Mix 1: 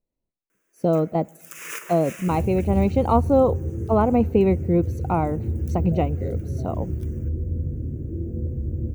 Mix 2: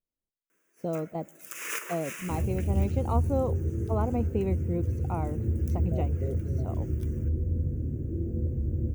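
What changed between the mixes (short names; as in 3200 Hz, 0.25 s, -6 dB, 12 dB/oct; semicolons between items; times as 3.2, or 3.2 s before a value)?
speech -11.5 dB; second sound: send off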